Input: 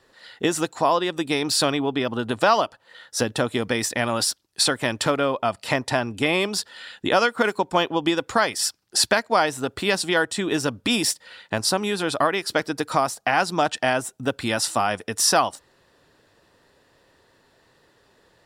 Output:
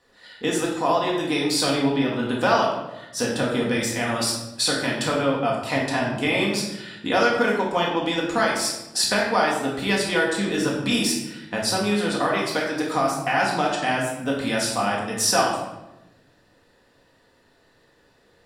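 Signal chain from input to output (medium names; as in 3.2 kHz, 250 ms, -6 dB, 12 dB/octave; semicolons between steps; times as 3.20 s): simulated room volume 380 m³, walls mixed, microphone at 1.9 m; trim -5.5 dB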